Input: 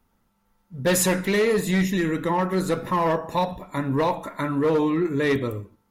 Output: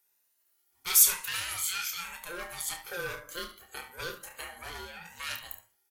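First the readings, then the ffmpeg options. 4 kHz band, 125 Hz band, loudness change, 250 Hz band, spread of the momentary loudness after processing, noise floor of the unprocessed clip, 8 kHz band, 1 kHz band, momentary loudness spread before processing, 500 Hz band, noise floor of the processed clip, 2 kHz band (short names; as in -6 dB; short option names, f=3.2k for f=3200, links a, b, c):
-0.5 dB, -26.5 dB, -5.5 dB, -31.0 dB, 21 LU, -69 dBFS, +3.0 dB, -16.5 dB, 7 LU, -22.5 dB, -74 dBFS, -7.0 dB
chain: -filter_complex "[0:a]afftfilt=real='re*pow(10,9/40*sin(2*PI*(1.9*log(max(b,1)*sr/1024/100)/log(2)-(1)*(pts-256)/sr)))':imag='im*pow(10,9/40*sin(2*PI*(1.9*log(max(b,1)*sr/1024/100)/log(2)-(1)*(pts-256)/sr)))':win_size=1024:overlap=0.75,highpass=650,aderivative,aeval=exprs='val(0)*sin(2*PI*520*n/s)':c=same,asplit=2[a][b];[b]aecho=0:1:29|71:0.422|0.224[c];[a][c]amix=inputs=2:normalize=0,volume=5.5dB"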